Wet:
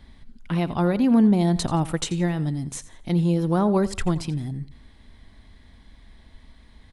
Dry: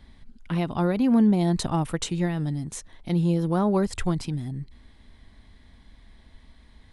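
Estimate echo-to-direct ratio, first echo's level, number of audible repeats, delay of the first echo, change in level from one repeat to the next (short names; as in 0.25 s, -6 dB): -16.5 dB, -17.0 dB, 2, 86 ms, -10.5 dB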